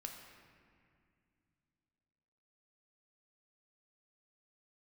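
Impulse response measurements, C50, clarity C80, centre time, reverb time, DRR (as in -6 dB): 4.5 dB, 5.5 dB, 56 ms, 2.2 s, 2.0 dB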